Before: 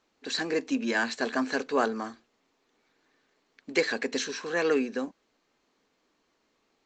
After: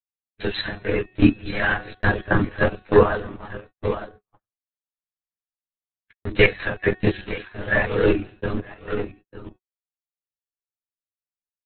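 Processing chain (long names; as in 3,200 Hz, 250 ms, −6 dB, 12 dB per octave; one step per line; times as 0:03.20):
comb filter 7.1 ms, depth 51%
single-tap delay 530 ms −9.5 dB
in parallel at −9.5 dB: bit reduction 5 bits
on the sum: transient designer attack +11 dB, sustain −9 dB
linear-prediction vocoder at 8 kHz whisper
time stretch by overlap-add 1.7×, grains 47 ms
hum removal 369.3 Hz, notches 29
noise gate −44 dBFS, range −41 dB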